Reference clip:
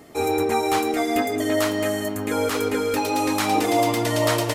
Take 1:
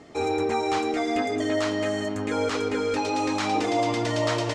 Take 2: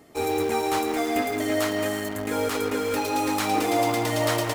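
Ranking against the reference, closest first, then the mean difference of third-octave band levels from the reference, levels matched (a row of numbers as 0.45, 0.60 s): 2, 1; 2.0, 3.5 dB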